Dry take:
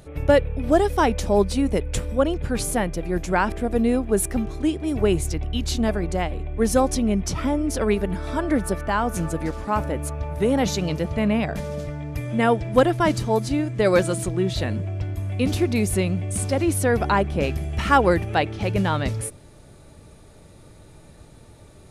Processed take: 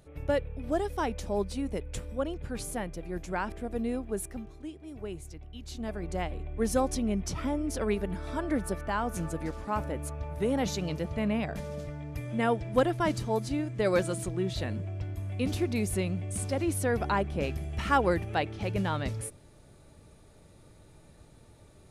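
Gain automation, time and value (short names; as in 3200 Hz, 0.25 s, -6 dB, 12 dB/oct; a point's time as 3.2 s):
4.06 s -11.5 dB
4.67 s -19 dB
5.58 s -19 dB
6.19 s -8 dB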